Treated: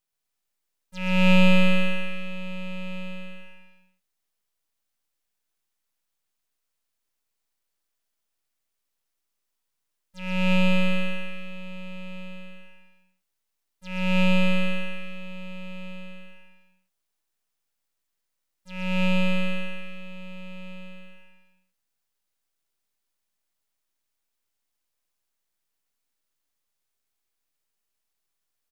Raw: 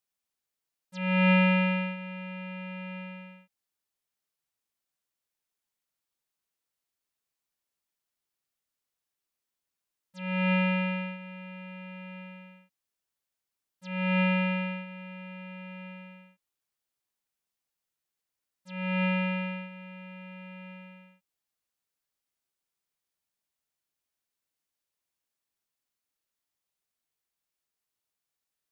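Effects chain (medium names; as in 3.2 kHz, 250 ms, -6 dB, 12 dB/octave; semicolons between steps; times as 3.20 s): half-wave rectifier; bouncing-ball echo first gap 130 ms, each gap 0.9×, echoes 5; trim +6 dB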